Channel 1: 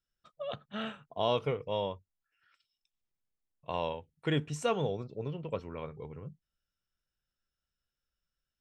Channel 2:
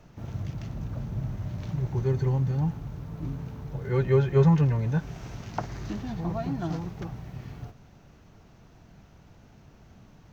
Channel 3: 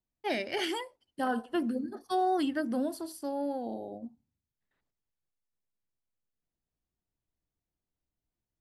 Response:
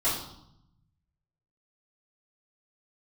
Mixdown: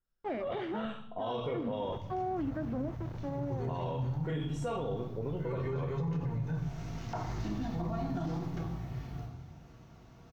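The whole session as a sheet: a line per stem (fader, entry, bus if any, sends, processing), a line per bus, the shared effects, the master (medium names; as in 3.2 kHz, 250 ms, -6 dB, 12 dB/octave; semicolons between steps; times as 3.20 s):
+1.5 dB, 0.00 s, bus A, send -17 dB, none
6.39 s -21 dB -> 6.94 s -14.5 dB, 1.55 s, no bus, send -8 dB, level rider gain up to 8 dB; high-pass 44 Hz
-2.5 dB, 0.00 s, bus A, no send, send-on-delta sampling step -36 dBFS
bus A: 0.0 dB, low-pass 1.3 kHz 12 dB/octave; peak limiter -24.5 dBFS, peak gain reduction 9 dB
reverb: on, RT60 0.75 s, pre-delay 3 ms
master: peak limiter -27 dBFS, peak gain reduction 9.5 dB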